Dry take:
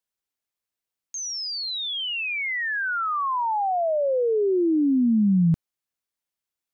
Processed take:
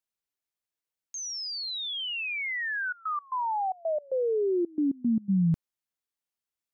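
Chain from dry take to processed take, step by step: 2.79–5.28 s: trance gate ".xxxx.x.x.xxx.x" 113 bpm -24 dB; trim -4.5 dB

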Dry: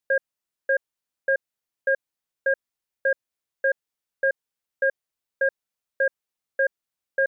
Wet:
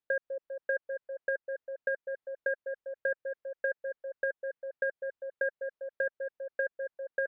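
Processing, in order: distance through air 240 m; repeats whose band climbs or falls 199 ms, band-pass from 420 Hz, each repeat 0.7 oct, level -7.5 dB; compression, threshold -25 dBFS, peak gain reduction 6.5 dB; trim -2.5 dB

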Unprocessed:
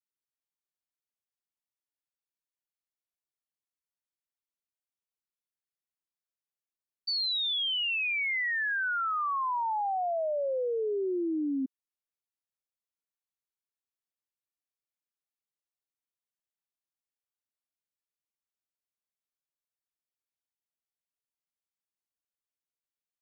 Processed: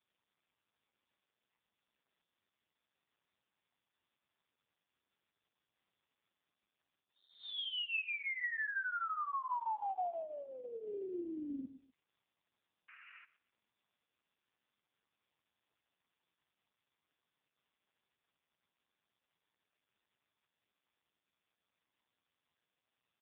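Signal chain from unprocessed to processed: resonant low shelf 720 Hz -7 dB, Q 3; hum notches 50/100/150 Hz; reverse; compression 10:1, threshold -36 dBFS, peak gain reduction 12.5 dB; reverse; LFO notch sine 6 Hz 750–2800 Hz; painted sound noise, 12.88–13.25 s, 1.1–2.9 kHz -58 dBFS; feedback delay 124 ms, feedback 23%, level -17.5 dB; trim +4 dB; AMR-NB 5.15 kbps 8 kHz

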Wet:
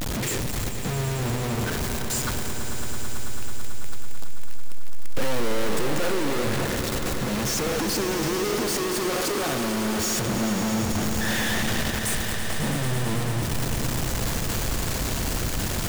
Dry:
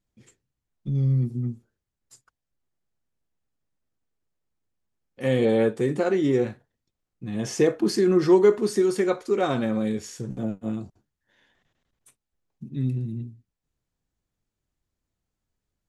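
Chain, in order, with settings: one-bit comparator; echo with a slow build-up 110 ms, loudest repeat 5, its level -12 dB

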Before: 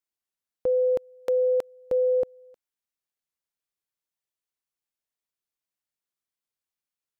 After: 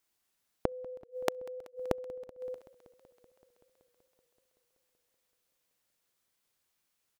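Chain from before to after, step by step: early reflections 39 ms -16.5 dB, 65 ms -14.5 dB; inverted gate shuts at -30 dBFS, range -33 dB; modulated delay 190 ms, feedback 78%, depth 110 cents, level -23 dB; trim +11 dB

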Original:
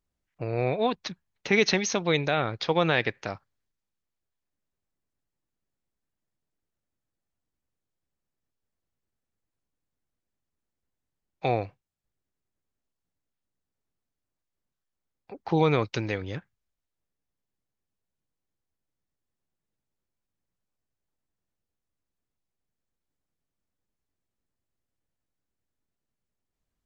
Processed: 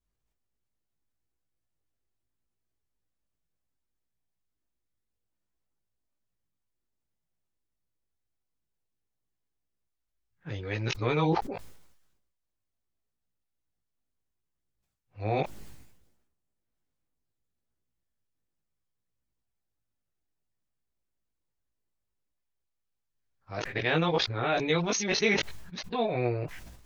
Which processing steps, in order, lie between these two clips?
reverse the whole clip; chorus voices 4, 0.67 Hz, delay 18 ms, depth 1.7 ms; decay stretcher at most 56 dB/s

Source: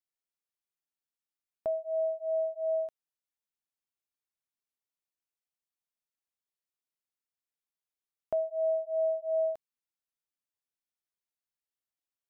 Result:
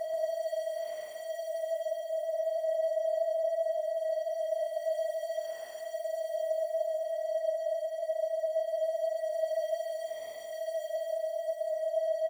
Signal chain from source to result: jump at every zero crossing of -42 dBFS; bass shelf 290 Hz -8.5 dB; peak limiter -32 dBFS, peak gain reduction 7.5 dB; delay 115 ms -18.5 dB; Paulstretch 13×, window 0.05 s, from 8.43 s; delay 136 ms -3 dB; trim +1 dB

